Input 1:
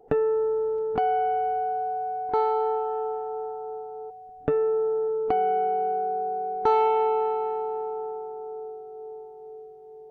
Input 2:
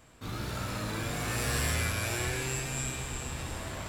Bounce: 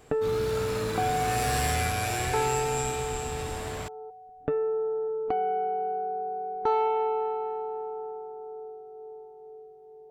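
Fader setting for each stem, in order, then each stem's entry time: -4.0 dB, +1.5 dB; 0.00 s, 0.00 s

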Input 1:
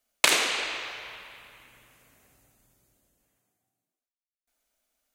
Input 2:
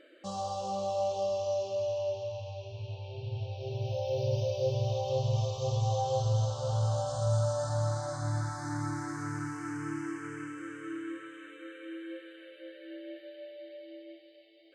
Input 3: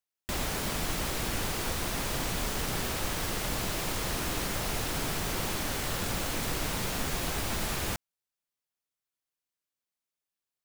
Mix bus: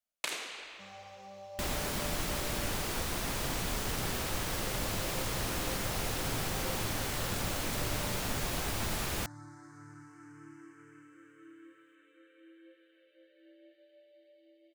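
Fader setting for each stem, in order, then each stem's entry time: -15.5 dB, -15.5 dB, -2.5 dB; 0.00 s, 0.55 s, 1.30 s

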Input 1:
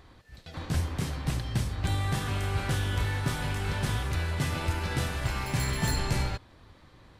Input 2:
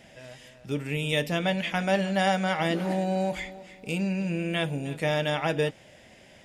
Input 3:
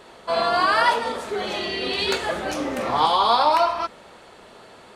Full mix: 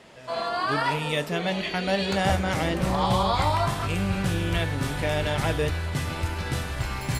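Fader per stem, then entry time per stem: +1.0 dB, -1.0 dB, -7.5 dB; 1.55 s, 0.00 s, 0.00 s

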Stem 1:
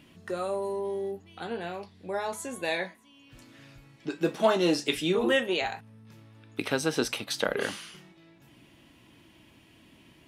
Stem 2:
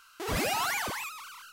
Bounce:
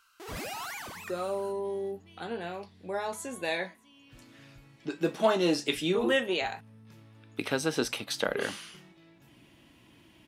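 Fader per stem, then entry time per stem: -1.5 dB, -8.5 dB; 0.80 s, 0.00 s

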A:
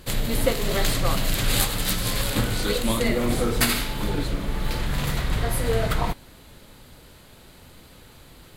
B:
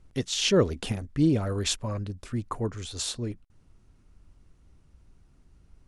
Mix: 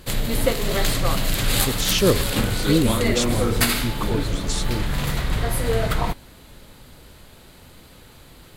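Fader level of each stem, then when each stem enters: +1.5 dB, +3.0 dB; 0.00 s, 1.50 s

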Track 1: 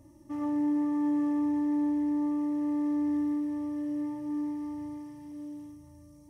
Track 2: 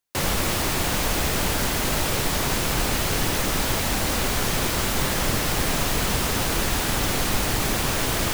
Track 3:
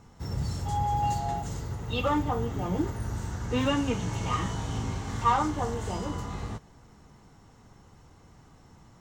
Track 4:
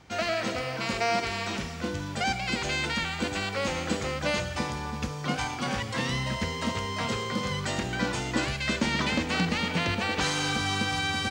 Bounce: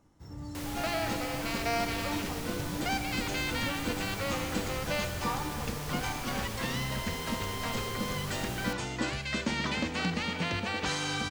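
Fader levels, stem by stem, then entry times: -14.0 dB, -17.0 dB, -12.5 dB, -4.5 dB; 0.00 s, 0.40 s, 0.00 s, 0.65 s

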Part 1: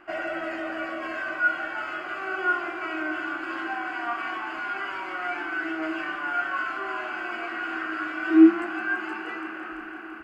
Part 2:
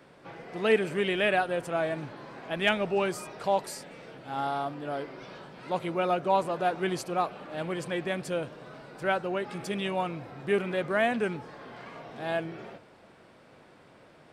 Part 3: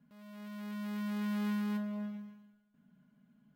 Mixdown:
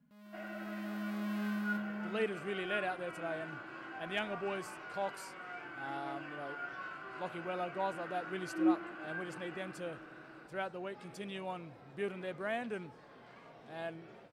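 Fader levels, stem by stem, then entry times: -16.0 dB, -11.5 dB, -3.0 dB; 0.25 s, 1.50 s, 0.00 s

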